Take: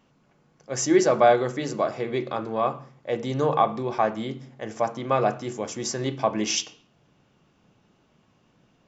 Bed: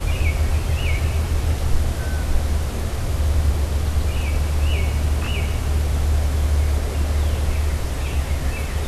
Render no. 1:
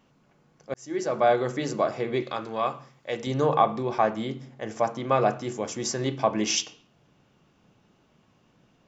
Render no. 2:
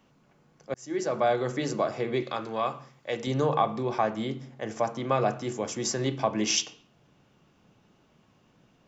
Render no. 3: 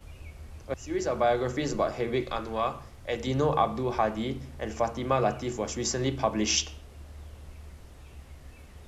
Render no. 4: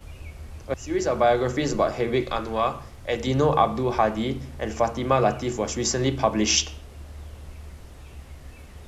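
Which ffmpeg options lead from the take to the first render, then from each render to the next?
ffmpeg -i in.wav -filter_complex "[0:a]asettb=1/sr,asplit=3[link_01][link_02][link_03];[link_01]atrim=end=2.224[link_04];[link_02]atrim=start=2.22:end=3.27,asetpts=PTS-STARTPTS,afade=type=in:duration=0.004:curve=qsin,afade=type=out:start_time=1.046:duration=0.004:curve=qsin,tiltshelf=frequency=1400:gain=-5.5[link_05];[link_03]atrim=start=3.266[link_06];[link_04][link_05]acrossfade=duration=0.004:curve1=hsin:curve2=qsin[link_07];[link_07][link_06]acrossfade=duration=0.004:curve1=qsin:curve2=hsin,asplit=2[link_08][link_09];[link_08]atrim=end=0.74,asetpts=PTS-STARTPTS,afade=type=out:start_time=0.736:duration=0.004:curve=hsin[link_10];[link_09]atrim=start=0.74,asetpts=PTS-STARTPTS,afade=type=in:duration=0.82[link_11];[link_10][link_11]concat=n=2:v=0:a=1" out.wav
ffmpeg -i in.wav -filter_complex "[0:a]acrossover=split=190|3000[link_01][link_02][link_03];[link_02]acompressor=threshold=-27dB:ratio=1.5[link_04];[link_01][link_04][link_03]amix=inputs=3:normalize=0" out.wav
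ffmpeg -i in.wav -i bed.wav -filter_complex "[1:a]volume=-25dB[link_01];[0:a][link_01]amix=inputs=2:normalize=0" out.wav
ffmpeg -i in.wav -af "volume=5dB" out.wav

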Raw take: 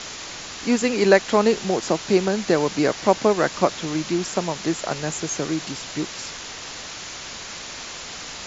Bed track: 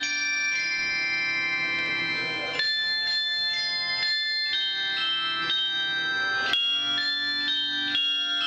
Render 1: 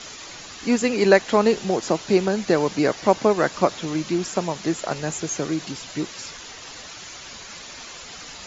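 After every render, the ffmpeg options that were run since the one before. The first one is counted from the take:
ffmpeg -i in.wav -af "afftdn=noise_reduction=8:noise_floor=-36" out.wav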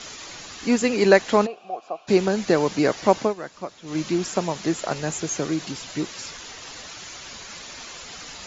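ffmpeg -i in.wav -filter_complex "[0:a]asplit=3[link_01][link_02][link_03];[link_01]afade=type=out:start_time=1.45:duration=0.02[link_04];[link_02]asplit=3[link_05][link_06][link_07];[link_05]bandpass=frequency=730:width_type=q:width=8,volume=0dB[link_08];[link_06]bandpass=frequency=1090:width_type=q:width=8,volume=-6dB[link_09];[link_07]bandpass=frequency=2440:width_type=q:width=8,volume=-9dB[link_10];[link_08][link_09][link_10]amix=inputs=3:normalize=0,afade=type=in:start_time=1.45:duration=0.02,afade=type=out:start_time=2.07:duration=0.02[link_11];[link_03]afade=type=in:start_time=2.07:duration=0.02[link_12];[link_04][link_11][link_12]amix=inputs=3:normalize=0,asplit=3[link_13][link_14][link_15];[link_13]atrim=end=3.35,asetpts=PTS-STARTPTS,afade=type=out:start_time=3.2:duration=0.15:silence=0.199526[link_16];[link_14]atrim=start=3.35:end=3.84,asetpts=PTS-STARTPTS,volume=-14dB[link_17];[link_15]atrim=start=3.84,asetpts=PTS-STARTPTS,afade=type=in:duration=0.15:silence=0.199526[link_18];[link_16][link_17][link_18]concat=n=3:v=0:a=1" out.wav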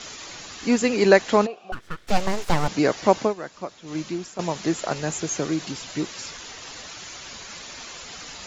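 ffmpeg -i in.wav -filter_complex "[0:a]asettb=1/sr,asplit=3[link_01][link_02][link_03];[link_01]atrim=end=1.724[link_04];[link_02]atrim=start=1.72:end=2.68,asetpts=PTS-STARTPTS,afade=type=in:duration=0.004:curve=qsin,afade=type=out:start_time=0.956:duration=0.004:curve=qsin,aeval=exprs='abs(val(0))':channel_layout=same[link_05];[link_03]atrim=start=2.676[link_06];[link_04][link_05]acrossfade=duration=0.004:curve1=hsin:curve2=qsin[link_07];[link_07][link_06]acrossfade=duration=0.004:curve1=qsin:curve2=hsin,asplit=2[link_08][link_09];[link_08]atrim=end=4.39,asetpts=PTS-STARTPTS,afade=type=out:start_time=3.73:duration=0.66:silence=0.199526[link_10];[link_09]atrim=start=4.39,asetpts=PTS-STARTPTS,afade=type=in:duration=0.004:curve=hsin:silence=0.199526[link_11];[link_10][link_11]concat=n=2:v=0:a=1" out.wav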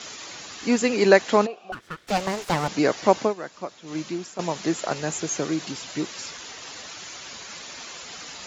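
ffmpeg -i in.wav -af "highpass=frequency=140:poles=1" out.wav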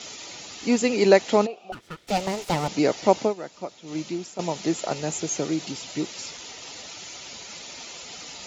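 ffmpeg -i in.wav -af "equalizer=frequency=1600:width=3.5:gain=-9,bandreject=frequency=1100:width=7.2" out.wav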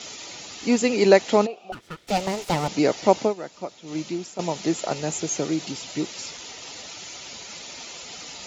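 ffmpeg -i in.wav -af "volume=1dB" out.wav

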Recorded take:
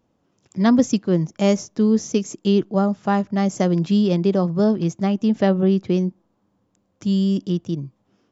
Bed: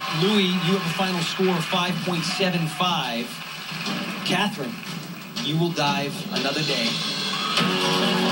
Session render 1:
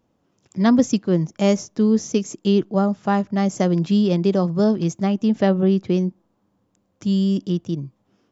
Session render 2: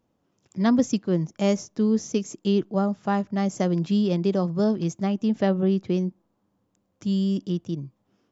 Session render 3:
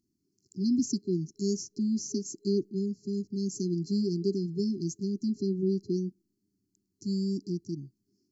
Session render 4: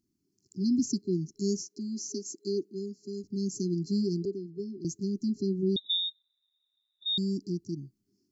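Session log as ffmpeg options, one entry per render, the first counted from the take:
ffmpeg -i in.wav -filter_complex "[0:a]asettb=1/sr,asplit=3[link_01][link_02][link_03];[link_01]atrim=end=4.244[link_04];[link_02]atrim=start=4.24:end=5.01,asetpts=PTS-STARTPTS,afade=type=in:duration=0.004:curve=qsin,afade=type=out:start_time=0.766:duration=0.004:curve=qsin,highshelf=frequency=6300:gain=7.5[link_05];[link_03]atrim=start=5.006[link_06];[link_04][link_05]acrossfade=duration=0.004:curve1=hsin:curve2=qsin[link_07];[link_07][link_06]acrossfade=duration=0.004:curve1=qsin:curve2=hsin" out.wav
ffmpeg -i in.wav -af "volume=-4.5dB" out.wav
ffmpeg -i in.wav -af "afftfilt=real='re*(1-between(b*sr/4096,410,4100))':imag='im*(1-between(b*sr/4096,410,4100))':win_size=4096:overlap=0.75,lowshelf=frequency=350:gain=-9" out.wav
ffmpeg -i in.wav -filter_complex "[0:a]asettb=1/sr,asplit=3[link_01][link_02][link_03];[link_01]atrim=end=1.624[link_04];[link_02]atrim=start=1.62:end=3.24,asetpts=PTS-STARTPTS,afade=type=in:duration=0.004:curve=qsin,afade=type=out:start_time=1.616:duration=0.004:curve=qsin,highpass=310[link_05];[link_03]atrim=start=3.236[link_06];[link_04][link_05]acrossfade=duration=0.004:curve1=hsin:curve2=qsin[link_07];[link_07][link_06]acrossfade=duration=0.004:curve1=qsin:curve2=hsin,asettb=1/sr,asplit=3[link_08][link_09][link_10];[link_08]atrim=end=4.254[link_11];[link_09]atrim=start=4.25:end=4.85,asetpts=PTS-STARTPTS,afade=type=in:duration=0.004:curve=qsin,afade=type=out:start_time=0.596:duration=0.004:curve=qsin,acrossover=split=370 2500:gain=0.251 1 0.112[link_12][link_13][link_14];[link_12][link_13][link_14]amix=inputs=3:normalize=0[link_15];[link_10]atrim=start=4.846[link_16];[link_11][link_15]acrossfade=duration=0.004:curve1=hsin:curve2=qsin[link_17];[link_17][link_16]acrossfade=duration=0.004:curve1=qsin:curve2=hsin,asettb=1/sr,asplit=3[link_18][link_19][link_20];[link_18]atrim=end=5.764[link_21];[link_19]atrim=start=5.76:end=7.18,asetpts=PTS-STARTPTS,afade=type=in:duration=0.004:curve=qsin,afade=type=out:start_time=1.416:duration=0.004:curve=qsin,lowpass=frequency=3300:width_type=q:width=0.5098,lowpass=frequency=3300:width_type=q:width=0.6013,lowpass=frequency=3300:width_type=q:width=0.9,lowpass=frequency=3300:width_type=q:width=2.563,afreqshift=-3900[link_22];[link_20]atrim=start=7.176[link_23];[link_21][link_22]acrossfade=duration=0.004:curve1=hsin:curve2=qsin[link_24];[link_24][link_23]acrossfade=duration=0.004:curve1=qsin:curve2=hsin" out.wav

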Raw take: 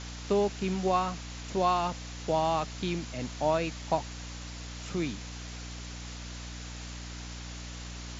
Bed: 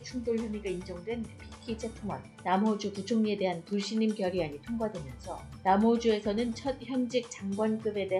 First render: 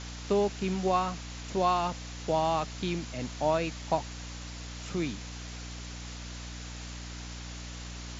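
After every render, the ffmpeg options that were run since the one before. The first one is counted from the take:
ffmpeg -i in.wav -af anull out.wav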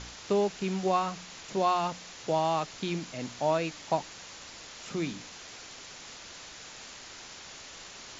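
ffmpeg -i in.wav -af "bandreject=frequency=60:width_type=h:width=4,bandreject=frequency=120:width_type=h:width=4,bandreject=frequency=180:width_type=h:width=4,bandreject=frequency=240:width_type=h:width=4,bandreject=frequency=300:width_type=h:width=4" out.wav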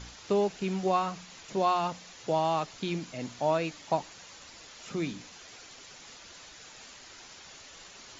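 ffmpeg -i in.wav -af "afftdn=noise_reduction=6:noise_floor=-47" out.wav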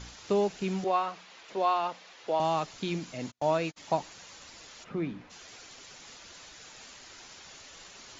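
ffmpeg -i in.wav -filter_complex "[0:a]asettb=1/sr,asplit=3[link_01][link_02][link_03];[link_01]atrim=end=0.844[link_04];[link_02]atrim=start=0.84:end=2.4,asetpts=PTS-STARTPTS,afade=type=in:duration=0.004:curve=qsin,afade=type=out:start_time=1.556:duration=0.004:curve=qsin,acrossover=split=310 4600:gain=0.141 1 0.2[link_05][link_06][link_07];[link_05][link_06][link_07]amix=inputs=3:normalize=0[link_08];[link_03]atrim=start=2.396[link_09];[link_04][link_08]acrossfade=duration=0.004:curve1=hsin:curve2=qsin[link_10];[link_10][link_09]acrossfade=duration=0.004:curve1=qsin:curve2=hsin,asplit=3[link_11][link_12][link_13];[link_11]afade=type=out:start_time=3.3:duration=0.02[link_14];[link_12]agate=range=-40dB:threshold=-38dB:ratio=16:release=100:detection=peak,afade=type=in:start_time=3.3:duration=0.02,afade=type=out:start_time=3.76:duration=0.02[link_15];[link_13]afade=type=in:start_time=3.76:duration=0.02[link_16];[link_14][link_15][link_16]amix=inputs=3:normalize=0,asplit=3[link_17][link_18][link_19];[link_17]afade=type=out:start_time=4.83:duration=0.02[link_20];[link_18]lowpass=1900,afade=type=in:start_time=4.83:duration=0.02,afade=type=out:start_time=5.29:duration=0.02[link_21];[link_19]afade=type=in:start_time=5.29:duration=0.02[link_22];[link_20][link_21][link_22]amix=inputs=3:normalize=0" out.wav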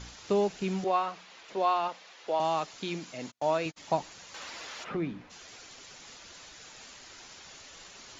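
ffmpeg -i in.wav -filter_complex "[0:a]asettb=1/sr,asplit=3[link_01][link_02][link_03];[link_01]atrim=end=1.884[link_04];[link_02]atrim=start=1.88:end=3.66,asetpts=PTS-STARTPTS,afade=type=in:duration=0.004:curve=qsin,afade=type=out:start_time=1.776:duration=0.004:curve=qsin,lowshelf=frequency=160:gain=-11.5[link_05];[link_03]atrim=start=3.656[link_06];[link_04][link_05]acrossfade=duration=0.004:curve1=hsin:curve2=qsin[link_07];[link_07][link_06]acrossfade=duration=0.004:curve1=qsin:curve2=hsin,asettb=1/sr,asplit=3[link_08][link_09][link_10];[link_08]atrim=end=4.344[link_11];[link_09]atrim=start=4.34:end=4.97,asetpts=PTS-STARTPTS,afade=type=in:duration=0.004:curve=qsin,afade=type=out:start_time=0.626:duration=0.004:curve=qsin,asplit=2[link_12][link_13];[link_13]highpass=frequency=720:poles=1,volume=18dB,asoftclip=type=tanh:threshold=-23.5dB[link_14];[link_12][link_14]amix=inputs=2:normalize=0,lowpass=frequency=2400:poles=1,volume=-6dB[link_15];[link_10]atrim=start=4.966[link_16];[link_11][link_15]acrossfade=duration=0.004:curve1=hsin:curve2=qsin[link_17];[link_17][link_16]acrossfade=duration=0.004:curve1=qsin:curve2=hsin" out.wav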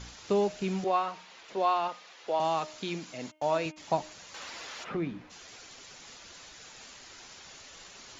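ffmpeg -i in.wav -af "bandreject=frequency=308.1:width_type=h:width=4,bandreject=frequency=616.2:width_type=h:width=4,bandreject=frequency=924.3:width_type=h:width=4,bandreject=frequency=1232.4:width_type=h:width=4,bandreject=frequency=1540.5:width_type=h:width=4,bandreject=frequency=1848.6:width_type=h:width=4,bandreject=frequency=2156.7:width_type=h:width=4,bandreject=frequency=2464.8:width_type=h:width=4,bandreject=frequency=2772.9:width_type=h:width=4,bandreject=frequency=3081:width_type=h:width=4,bandreject=frequency=3389.1:width_type=h:width=4" out.wav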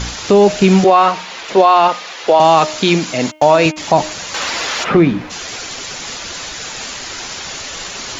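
ffmpeg -i in.wav -af "acontrast=81,alimiter=level_in=15.5dB:limit=-1dB:release=50:level=0:latency=1" out.wav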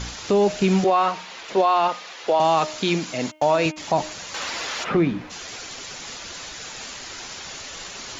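ffmpeg -i in.wav -af "volume=-9dB" out.wav

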